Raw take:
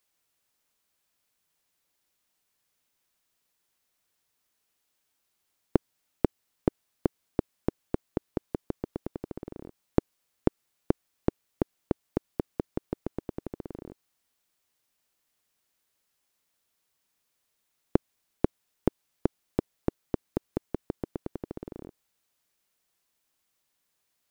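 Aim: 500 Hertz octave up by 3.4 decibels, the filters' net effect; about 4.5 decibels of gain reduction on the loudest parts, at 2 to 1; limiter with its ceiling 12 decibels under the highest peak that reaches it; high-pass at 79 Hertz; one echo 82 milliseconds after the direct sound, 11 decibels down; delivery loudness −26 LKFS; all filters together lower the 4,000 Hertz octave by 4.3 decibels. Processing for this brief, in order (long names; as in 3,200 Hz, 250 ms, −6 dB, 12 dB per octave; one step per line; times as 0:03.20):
high-pass filter 79 Hz
parametric band 500 Hz +4.5 dB
parametric band 4,000 Hz −6 dB
downward compressor 2 to 1, threshold −25 dBFS
brickwall limiter −19.5 dBFS
single-tap delay 82 ms −11 dB
level +16.5 dB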